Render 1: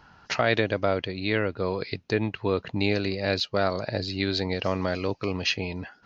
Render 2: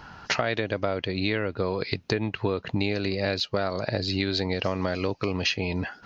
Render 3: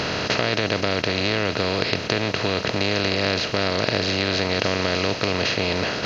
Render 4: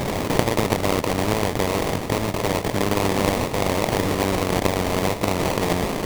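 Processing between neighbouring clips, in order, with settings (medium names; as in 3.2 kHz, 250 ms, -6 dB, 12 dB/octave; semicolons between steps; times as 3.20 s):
compression 6:1, threshold -32 dBFS, peak gain reduction 14 dB; trim +9 dB
spectral levelling over time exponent 0.2; trim -3.5 dB
sample-rate reducer 1.5 kHz, jitter 20%; trim +1 dB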